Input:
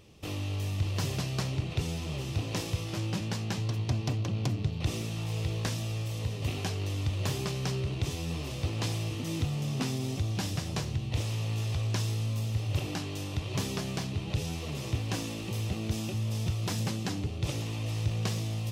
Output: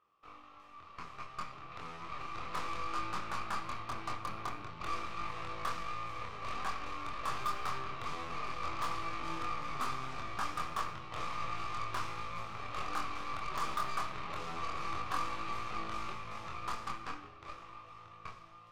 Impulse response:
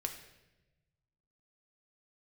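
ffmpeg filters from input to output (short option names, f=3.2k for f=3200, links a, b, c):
-filter_complex "[0:a]dynaudnorm=f=130:g=31:m=15dB,bandpass=f=1.2k:t=q:w=11:csg=0,asoftclip=type=tanh:threshold=-31.5dB,aeval=exprs='0.0266*(cos(1*acos(clip(val(0)/0.0266,-1,1)))-cos(1*PI/2))+0.00376*(cos(8*acos(clip(val(0)/0.0266,-1,1)))-cos(8*PI/2))':c=same,asplit=2[a][b];[1:a]atrim=start_sample=2205,adelay=24[c];[b][c]afir=irnorm=-1:irlink=0,volume=-2dB[d];[a][d]amix=inputs=2:normalize=0,volume=3dB"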